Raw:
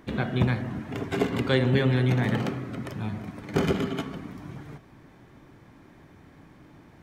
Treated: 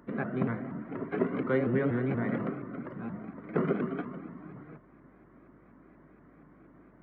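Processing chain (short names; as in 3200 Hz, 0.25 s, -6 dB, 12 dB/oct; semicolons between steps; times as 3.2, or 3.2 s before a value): HPF 150 Hz 24 dB/oct; resonant high shelf 2400 Hz -10.5 dB, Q 1.5; notch comb 840 Hz; hum 50 Hz, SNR 34 dB; air absorption 400 m; shaped vibrato saw up 4.2 Hz, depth 160 cents; gain -2.5 dB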